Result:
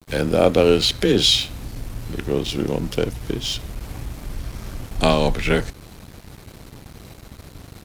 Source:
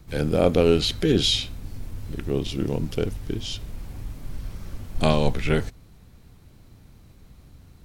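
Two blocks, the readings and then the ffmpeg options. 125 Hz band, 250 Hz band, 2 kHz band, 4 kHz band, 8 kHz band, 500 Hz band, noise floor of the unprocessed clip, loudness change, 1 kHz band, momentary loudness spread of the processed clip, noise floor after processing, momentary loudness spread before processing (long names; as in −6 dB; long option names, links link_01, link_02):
+0.5 dB, +2.5 dB, +6.0 dB, +6.0 dB, +6.5 dB, +4.0 dB, −51 dBFS, +4.0 dB, +5.5 dB, 18 LU, −45 dBFS, 19 LU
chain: -filter_complex "[0:a]asplit=2[link_01][link_02];[link_02]acompressor=threshold=-33dB:ratio=6,volume=2.5dB[link_03];[link_01][link_03]amix=inputs=2:normalize=0,afreqshift=16,areverse,acompressor=mode=upward:threshold=-27dB:ratio=2.5,areverse,aresample=32000,aresample=44100,aeval=exprs='sgn(val(0))*max(abs(val(0))-0.01,0)':channel_layout=same,lowshelf=frequency=310:gain=-6.5,volume=4.5dB"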